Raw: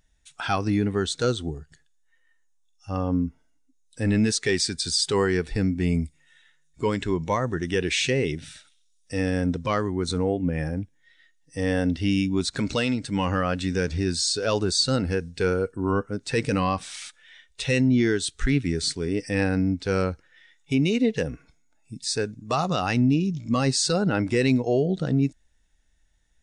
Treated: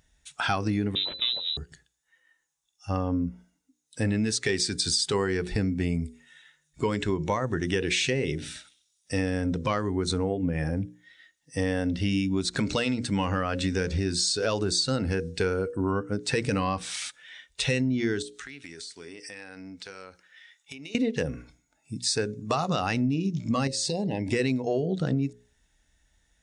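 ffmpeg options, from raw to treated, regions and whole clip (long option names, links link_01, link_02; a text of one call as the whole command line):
ffmpeg -i in.wav -filter_complex "[0:a]asettb=1/sr,asplit=3[link_01][link_02][link_03];[link_01]atrim=end=0.954[link_04];[link_02]atrim=start=0.95:end=1.57,asetpts=PTS-STARTPTS,afade=type=in:duration=0.004:curve=qsin,afade=type=out:start_time=0.616:duration=0.004:curve=qsin,equalizer=frequency=1700:width_type=o:width=1.7:gain=-10.5,aeval=exprs='clip(val(0),-1,0.0133)':channel_layout=same,lowpass=frequency=3400:width_type=q:width=0.5098,lowpass=frequency=3400:width_type=q:width=0.6013,lowpass=frequency=3400:width_type=q:width=0.9,lowpass=frequency=3400:width_type=q:width=2.563,afreqshift=-4000[link_05];[link_03]atrim=start=1.566[link_06];[link_04][link_05]acrossfade=duration=0.004:curve1=hsin:curve2=qsin[link_07];[link_07][link_06]acrossfade=duration=0.004:curve1=qsin:curve2=hsin,asettb=1/sr,asplit=3[link_08][link_09][link_10];[link_08]atrim=end=18.224[link_11];[link_09]atrim=start=18.22:end=20.95,asetpts=PTS-STARTPTS,afade=type=in:duration=0.004:curve=qsin,afade=type=out:start_time=2.726:duration=0.004:curve=qsin,highpass=frequency=1300:poles=1,acompressor=threshold=-41dB:ratio=16:attack=3.2:release=140:knee=1:detection=peak[link_12];[link_10]atrim=start=20.946[link_13];[link_11][link_12]acrossfade=duration=0.004:curve1=hsin:curve2=qsin[link_14];[link_14][link_13]acrossfade=duration=0.004:curve1=qsin:curve2=hsin,asettb=1/sr,asplit=3[link_15][link_16][link_17];[link_15]atrim=end=23.674[link_18];[link_16]atrim=start=23.67:end=24.33,asetpts=PTS-STARTPTS,afade=type=in:duration=0.004:curve=qsin,afade=type=out:start_time=0.656:duration=0.004:curve=qsin,acompressor=threshold=-27dB:ratio=10:attack=3.2:release=140:knee=1:detection=peak,asuperstop=centerf=1300:order=12:qfactor=1.9[link_19];[link_17]atrim=start=24.326[link_20];[link_18][link_19]acrossfade=duration=0.004:curve1=hsin:curve2=qsin[link_21];[link_21][link_20]acrossfade=duration=0.004:curve1=qsin:curve2=hsin,highpass=41,bandreject=frequency=60:width_type=h:width=6,bandreject=frequency=120:width_type=h:width=6,bandreject=frequency=180:width_type=h:width=6,bandreject=frequency=240:width_type=h:width=6,bandreject=frequency=300:width_type=h:width=6,bandreject=frequency=360:width_type=h:width=6,bandreject=frequency=420:width_type=h:width=6,bandreject=frequency=480:width_type=h:width=6,bandreject=frequency=540:width_type=h:width=6,acompressor=threshold=-27dB:ratio=6,volume=4dB" out.wav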